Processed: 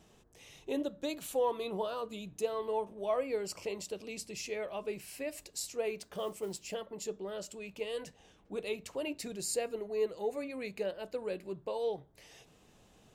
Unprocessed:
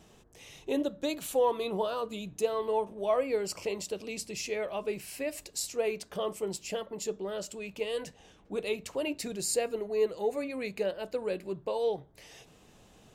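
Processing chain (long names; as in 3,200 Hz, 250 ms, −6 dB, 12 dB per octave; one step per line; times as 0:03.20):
0:05.98–0:06.74: noise that follows the level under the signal 26 dB
level −4.5 dB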